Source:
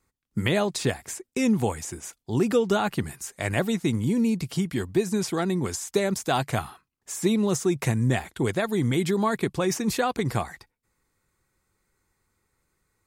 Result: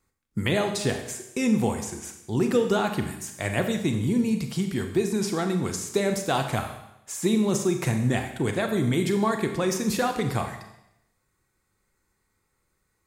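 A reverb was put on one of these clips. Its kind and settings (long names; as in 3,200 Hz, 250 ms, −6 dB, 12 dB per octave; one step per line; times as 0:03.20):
four-comb reverb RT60 0.84 s, combs from 29 ms, DRR 5.5 dB
level −1 dB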